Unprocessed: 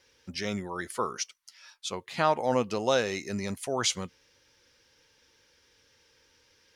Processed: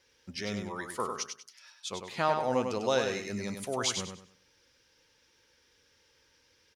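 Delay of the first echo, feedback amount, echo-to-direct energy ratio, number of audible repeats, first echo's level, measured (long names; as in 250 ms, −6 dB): 98 ms, 28%, −5.5 dB, 3, −6.0 dB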